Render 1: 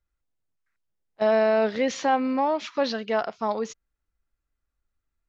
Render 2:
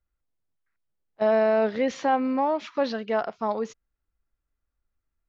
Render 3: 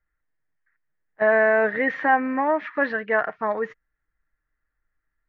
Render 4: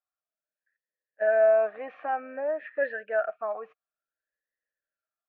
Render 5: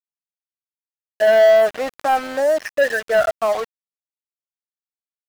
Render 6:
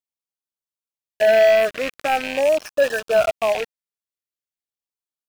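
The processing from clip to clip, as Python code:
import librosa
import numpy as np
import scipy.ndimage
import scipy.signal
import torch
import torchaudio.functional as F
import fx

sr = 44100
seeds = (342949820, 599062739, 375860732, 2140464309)

y1 = fx.high_shelf(x, sr, hz=3100.0, db=-9.0)
y2 = fx.lowpass_res(y1, sr, hz=1800.0, q=7.2)
y2 = y2 + 0.37 * np.pad(y2, (int(6.5 * sr / 1000.0), 0))[:len(y2)]
y3 = fx.vowel_sweep(y2, sr, vowels='a-e', hz=0.55)
y3 = y3 * 10.0 ** (1.5 / 20.0)
y4 = np.sign(y3) * np.maximum(np.abs(y3) - 10.0 ** (-41.5 / 20.0), 0.0)
y4 = fx.power_curve(y4, sr, exponent=0.5)
y4 = y4 * 10.0 ** (7.0 / 20.0)
y5 = fx.rattle_buzz(y4, sr, strikes_db=-41.0, level_db=-14.0)
y5 = fx.filter_lfo_notch(y5, sr, shape='sine', hz=0.43, low_hz=820.0, high_hz=2100.0, q=1.7)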